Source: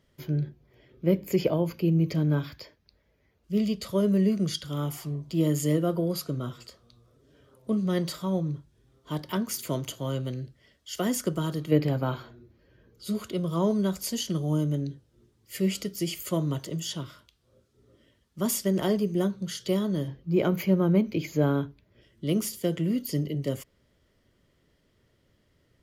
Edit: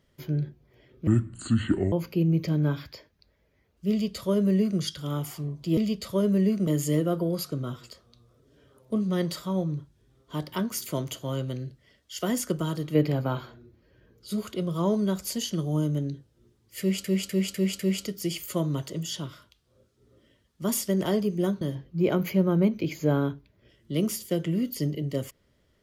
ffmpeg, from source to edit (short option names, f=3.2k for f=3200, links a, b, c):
-filter_complex "[0:a]asplit=10[a][b][c][d][e][f][g][h][i][j];[a]atrim=end=1.074[k];[b]atrim=start=1.07:end=1.59,asetpts=PTS-STARTPTS,asetrate=26901,aresample=44100,atrim=end_sample=37593,asetpts=PTS-STARTPTS[l];[c]atrim=start=1.586:end=5.442[m];[d]atrim=start=3.568:end=4.472[n];[e]atrim=start=5.438:end=15.812[o];[f]atrim=start=15.558:end=15.812[p];[g]atrim=start=15.558:end=15.812[q];[h]atrim=start=15.558:end=15.812[r];[i]atrim=start=15.558:end=19.382[s];[j]atrim=start=19.938[t];[k][l]acrossfade=d=0.004:c1=hsin:c2=hsin[u];[u][m]acrossfade=d=0.004:c1=hsin:c2=hsin[v];[v][n]acrossfade=d=0.004:c1=hsin:c2=hsin[w];[w][o]acrossfade=d=0.004:c1=hsin:c2=hsin[x];[x][p]acrossfade=d=0.004:c1=hsin:c2=hsin[y];[y][q]acrossfade=d=0.004:c1=hsin:c2=hsin[z];[z][r]acrossfade=d=0.004:c1=hsin:c2=hsin[aa];[aa][s]acrossfade=d=0.004:c1=hsin:c2=hsin[ab];[ab][t]acrossfade=d=0.004:c1=hsin:c2=hsin"